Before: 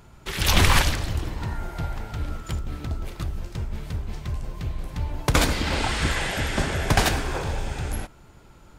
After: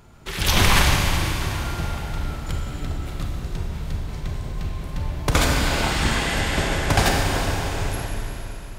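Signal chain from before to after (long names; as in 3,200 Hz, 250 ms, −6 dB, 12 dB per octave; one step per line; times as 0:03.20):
four-comb reverb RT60 3.6 s, combs from 31 ms, DRR 0 dB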